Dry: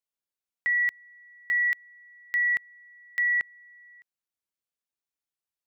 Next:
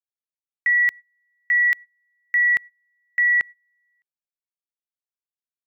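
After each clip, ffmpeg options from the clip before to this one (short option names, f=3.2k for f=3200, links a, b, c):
-af "agate=range=-23dB:threshold=-38dB:ratio=16:detection=peak,volume=6.5dB"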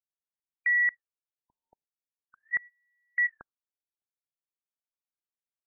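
-af "afftfilt=real='re*lt(b*sr/1024,930*pow(2400/930,0.5+0.5*sin(2*PI*0.43*pts/sr)))':imag='im*lt(b*sr/1024,930*pow(2400/930,0.5+0.5*sin(2*PI*0.43*pts/sr)))':win_size=1024:overlap=0.75,volume=-6dB"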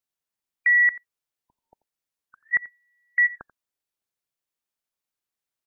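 -af "aecho=1:1:87:0.106,volume=6.5dB"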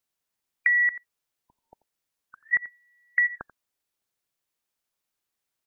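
-af "acompressor=threshold=-24dB:ratio=10,volume=4.5dB"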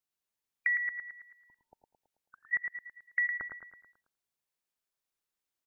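-af "aecho=1:1:109|218|327|436|545|654:0.531|0.265|0.133|0.0664|0.0332|0.0166,volume=-7.5dB"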